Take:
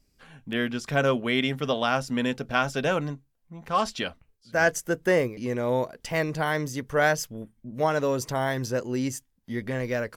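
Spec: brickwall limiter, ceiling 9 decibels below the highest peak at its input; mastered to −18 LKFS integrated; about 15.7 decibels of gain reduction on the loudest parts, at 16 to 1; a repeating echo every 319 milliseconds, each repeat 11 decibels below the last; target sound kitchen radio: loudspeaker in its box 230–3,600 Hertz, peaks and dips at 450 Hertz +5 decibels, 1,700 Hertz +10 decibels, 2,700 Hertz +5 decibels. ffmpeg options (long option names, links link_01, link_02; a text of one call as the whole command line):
ffmpeg -i in.wav -af "acompressor=threshold=-33dB:ratio=16,alimiter=level_in=5.5dB:limit=-24dB:level=0:latency=1,volume=-5.5dB,highpass=230,equalizer=frequency=450:width_type=q:width=4:gain=5,equalizer=frequency=1700:width_type=q:width=4:gain=10,equalizer=frequency=2700:width_type=q:width=4:gain=5,lowpass=frequency=3600:width=0.5412,lowpass=frequency=3600:width=1.3066,aecho=1:1:319|638|957:0.282|0.0789|0.0221,volume=20.5dB" out.wav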